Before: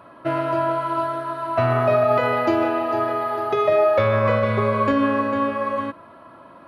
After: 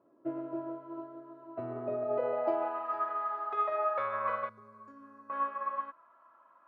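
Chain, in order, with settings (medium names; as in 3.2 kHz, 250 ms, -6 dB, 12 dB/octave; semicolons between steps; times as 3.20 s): 4.49–5.30 s: FFT filter 240 Hz 0 dB, 680 Hz -19 dB, 1.4 kHz -17 dB, 3.2 kHz -24 dB, 6.1 kHz +6 dB; band-pass sweep 350 Hz -> 1.2 kHz, 1.98–2.90 s; upward expansion 1.5:1, over -36 dBFS; trim -4.5 dB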